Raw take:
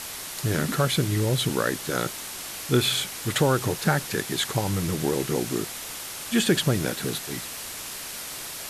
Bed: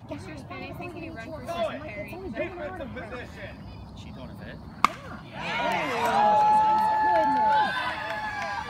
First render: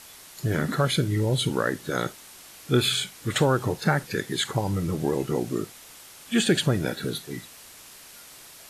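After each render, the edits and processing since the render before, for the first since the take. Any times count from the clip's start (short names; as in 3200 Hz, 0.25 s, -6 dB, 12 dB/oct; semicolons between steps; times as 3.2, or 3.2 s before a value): noise print and reduce 11 dB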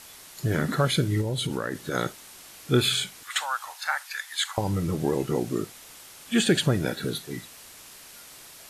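1.21–1.94 compressor, threshold -24 dBFS; 3.23–4.58 inverse Chebyshev high-pass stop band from 430 Hz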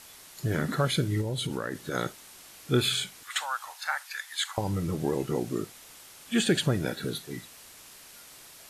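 gain -3 dB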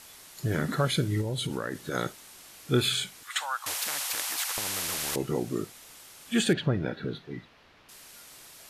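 3.66–5.16 spectral compressor 10:1; 6.53–7.89 air absorption 300 m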